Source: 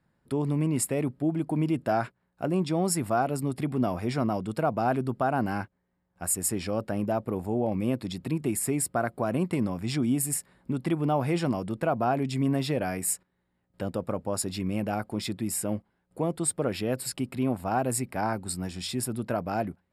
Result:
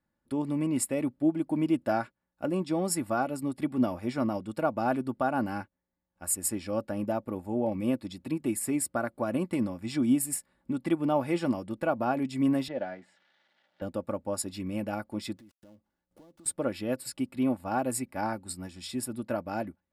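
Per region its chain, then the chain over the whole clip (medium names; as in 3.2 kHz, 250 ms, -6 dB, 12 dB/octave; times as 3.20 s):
12.68–13.82 s: zero-crossing glitches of -33.5 dBFS + cabinet simulation 210–3200 Hz, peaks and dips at 290 Hz -7 dB, 430 Hz -4 dB, 700 Hz +4 dB, 1.1 kHz -8 dB, 2.5 kHz -10 dB
15.37–16.46 s: dead-time distortion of 0.14 ms + band-stop 2.4 kHz, Q 13 + compression, threshold -42 dBFS
whole clip: comb 3.5 ms, depth 50%; upward expansion 1.5:1, over -40 dBFS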